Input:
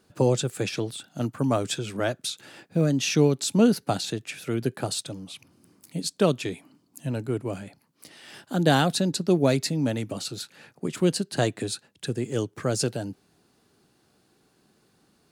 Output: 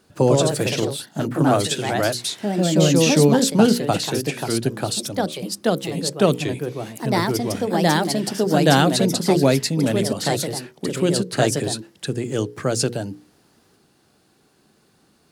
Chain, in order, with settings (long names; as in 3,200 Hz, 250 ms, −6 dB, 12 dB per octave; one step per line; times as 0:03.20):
mains-hum notches 60/120/180/240/300/360/420/480 Hz
delay with pitch and tempo change per echo 123 ms, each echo +2 semitones, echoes 2
level +5 dB